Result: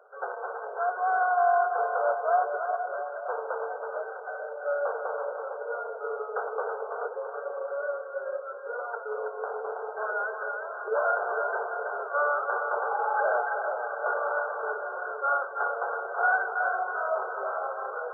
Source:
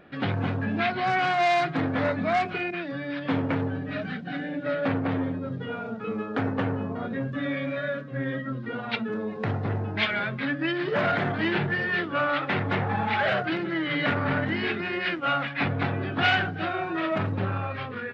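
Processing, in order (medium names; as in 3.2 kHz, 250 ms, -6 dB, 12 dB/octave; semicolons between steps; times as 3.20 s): brick-wall FIR band-pass 400–1600 Hz; on a send: two-band feedback delay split 680 Hz, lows 447 ms, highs 326 ms, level -5 dB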